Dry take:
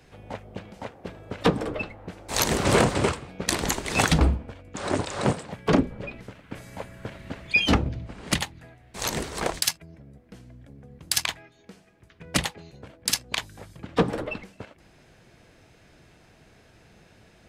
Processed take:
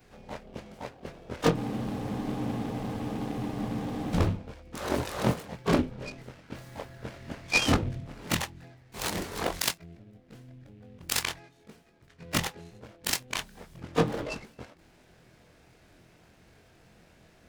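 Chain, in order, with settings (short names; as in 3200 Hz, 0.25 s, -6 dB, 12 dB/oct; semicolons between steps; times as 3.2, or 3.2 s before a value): short-time reversal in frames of 48 ms; spectral freeze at 1.59, 2.55 s; noise-modulated delay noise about 2200 Hz, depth 0.038 ms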